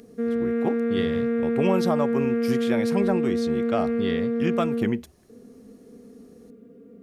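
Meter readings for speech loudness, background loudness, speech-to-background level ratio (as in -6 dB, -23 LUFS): -29.0 LUFS, -25.0 LUFS, -4.0 dB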